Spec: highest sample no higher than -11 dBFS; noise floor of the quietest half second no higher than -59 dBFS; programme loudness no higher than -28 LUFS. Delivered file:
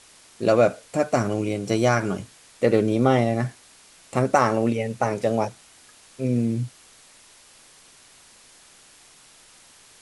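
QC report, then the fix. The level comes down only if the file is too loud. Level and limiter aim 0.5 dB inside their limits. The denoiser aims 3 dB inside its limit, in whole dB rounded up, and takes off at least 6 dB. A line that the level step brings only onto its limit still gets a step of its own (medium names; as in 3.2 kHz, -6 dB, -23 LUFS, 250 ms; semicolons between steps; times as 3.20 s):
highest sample -5.0 dBFS: fail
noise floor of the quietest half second -52 dBFS: fail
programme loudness -23.0 LUFS: fail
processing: noise reduction 6 dB, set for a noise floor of -52 dBFS; trim -5.5 dB; peak limiter -11.5 dBFS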